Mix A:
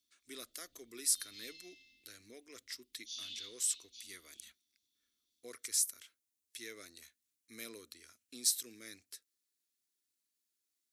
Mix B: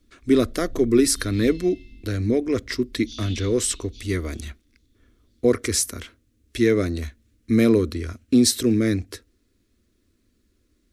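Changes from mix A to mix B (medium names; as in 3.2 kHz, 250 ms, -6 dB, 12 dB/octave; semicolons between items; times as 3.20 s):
speech +9.0 dB; master: remove differentiator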